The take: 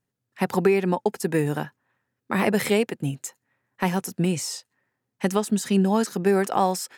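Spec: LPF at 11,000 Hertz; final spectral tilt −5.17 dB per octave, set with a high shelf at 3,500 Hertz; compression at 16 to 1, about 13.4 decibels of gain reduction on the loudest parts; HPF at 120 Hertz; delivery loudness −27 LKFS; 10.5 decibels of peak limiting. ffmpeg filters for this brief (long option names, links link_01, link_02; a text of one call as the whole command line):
ffmpeg -i in.wav -af "highpass=120,lowpass=11000,highshelf=frequency=3500:gain=-6.5,acompressor=threshold=-29dB:ratio=16,volume=10.5dB,alimiter=limit=-14.5dB:level=0:latency=1" out.wav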